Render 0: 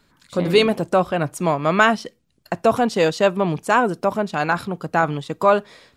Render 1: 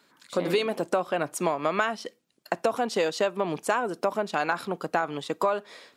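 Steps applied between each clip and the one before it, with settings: high-pass 290 Hz 12 dB/octave; compression 12:1, threshold -21 dBFS, peak gain reduction 12 dB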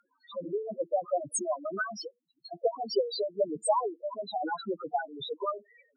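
loudest bins only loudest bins 2; peaking EQ 9.6 kHz +13.5 dB 2.6 oct; harmonic-percussive split harmonic -13 dB; trim +6 dB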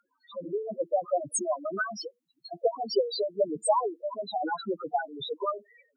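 level rider gain up to 4 dB; trim -2 dB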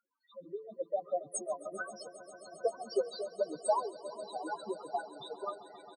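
doubling 13 ms -13.5 dB; on a send: echo with a slow build-up 134 ms, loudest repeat 5, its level -16.5 dB; on the sum: upward expansion 1.5:1, over -36 dBFS; trim -5 dB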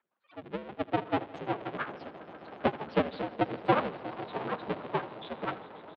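cycle switcher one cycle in 3, inverted; feedback delay 80 ms, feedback 57%, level -18 dB; mistuned SSB -78 Hz 200–3500 Hz; trim +4.5 dB

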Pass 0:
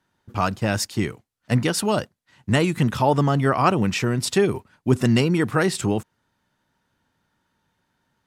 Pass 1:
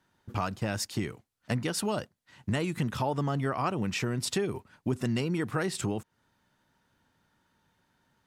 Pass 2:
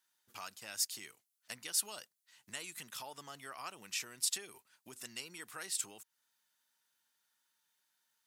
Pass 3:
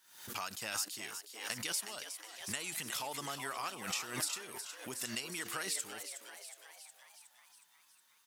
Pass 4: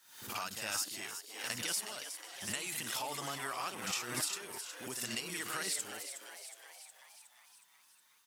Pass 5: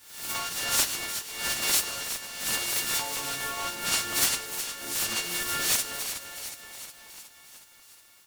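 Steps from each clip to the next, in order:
compression 3:1, threshold -30 dBFS, peak gain reduction 13.5 dB
differentiator; trim +1.5 dB
compression, threshold -44 dBFS, peak gain reduction 15.5 dB; on a send: frequency-shifting echo 365 ms, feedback 61%, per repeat +110 Hz, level -9.5 dB; on the sum: swell ahead of each attack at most 86 dB/s; trim +8.5 dB
reverse echo 58 ms -5.5 dB
partials quantised in pitch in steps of 4 st; reverberation RT60 1.1 s, pre-delay 4 ms, DRR 11 dB; delay time shaken by noise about 1.4 kHz, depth 0.042 ms

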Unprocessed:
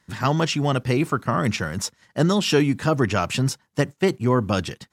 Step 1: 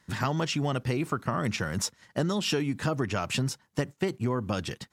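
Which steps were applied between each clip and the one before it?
compression, threshold -25 dBFS, peak gain reduction 11.5 dB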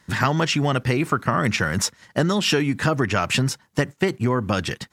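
dynamic bell 1.8 kHz, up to +5 dB, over -48 dBFS, Q 1.3; trim +7 dB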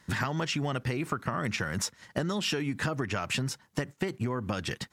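compression, threshold -25 dBFS, peak gain reduction 10.5 dB; trim -2.5 dB

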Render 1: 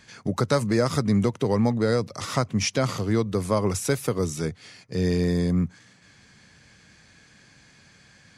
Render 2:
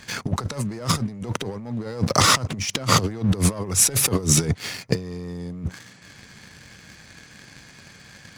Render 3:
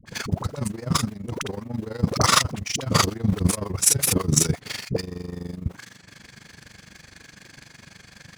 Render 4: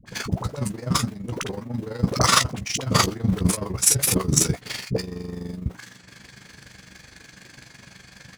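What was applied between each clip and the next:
waveshaping leveller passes 2; compressor with a negative ratio -25 dBFS, ratio -0.5; trim +3 dB
in parallel at -5.5 dB: short-mantissa float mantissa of 2-bit; on the sum: phase dispersion highs, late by 60 ms, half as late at 540 Hz; AM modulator 24 Hz, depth 75%; trim -1 dB
doubling 16 ms -9 dB

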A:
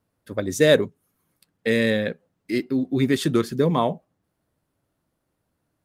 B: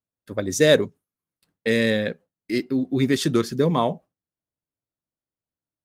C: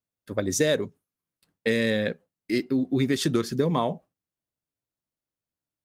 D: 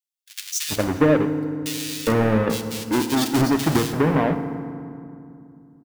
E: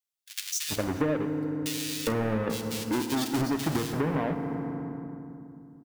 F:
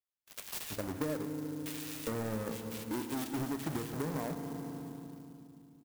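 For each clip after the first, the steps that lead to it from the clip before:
gate with hold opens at -36 dBFS; dynamic bell 5.6 kHz, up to +6 dB, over -47 dBFS, Q 1.8
compression 6:1, threshold -19 dBFS, peak gain reduction 8.5 dB
square wave that keeps the level; bands offset in time highs, lows 410 ms, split 2.5 kHz; FDN reverb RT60 2.5 s, low-frequency decay 1.45×, high-frequency decay 0.55×, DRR 8.5 dB
compression 2.5:1, threshold -29 dBFS, peak gain reduction 11.5 dB
sampling jitter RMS 0.059 ms; trim -8.5 dB

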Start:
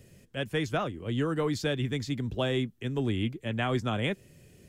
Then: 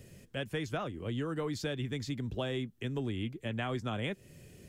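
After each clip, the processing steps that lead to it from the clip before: compression 2.5:1, threshold -37 dBFS, peak gain reduction 9.5 dB; trim +1.5 dB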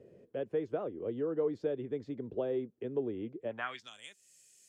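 band-pass sweep 450 Hz -> 7.3 kHz, 3.44–3.94 s; trim +6.5 dB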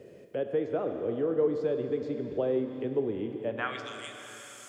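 Schroeder reverb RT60 3.4 s, combs from 27 ms, DRR 5.5 dB; tape noise reduction on one side only encoder only; trim +4.5 dB

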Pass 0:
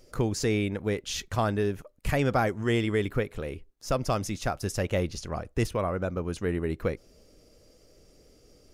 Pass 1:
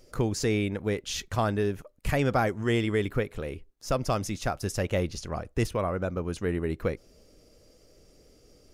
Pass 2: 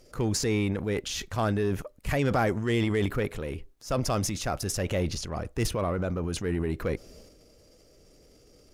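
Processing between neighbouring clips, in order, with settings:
no audible change
Chebyshev shaper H 6 -29 dB, 8 -27 dB, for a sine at -13 dBFS; transient shaper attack -3 dB, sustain +8 dB

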